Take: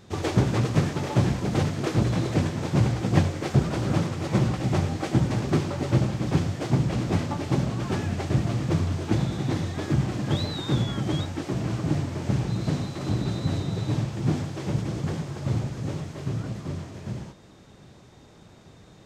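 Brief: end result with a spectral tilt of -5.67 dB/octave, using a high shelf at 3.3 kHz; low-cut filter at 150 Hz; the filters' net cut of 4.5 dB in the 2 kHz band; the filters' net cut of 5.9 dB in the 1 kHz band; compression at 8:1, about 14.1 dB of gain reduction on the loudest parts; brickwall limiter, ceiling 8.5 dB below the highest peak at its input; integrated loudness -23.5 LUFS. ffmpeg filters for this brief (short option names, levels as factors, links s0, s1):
-af "highpass=150,equalizer=f=1000:t=o:g=-7.5,equalizer=f=2000:t=o:g=-4.5,highshelf=f=3300:g=3.5,acompressor=threshold=0.02:ratio=8,volume=6.68,alimiter=limit=0.2:level=0:latency=1"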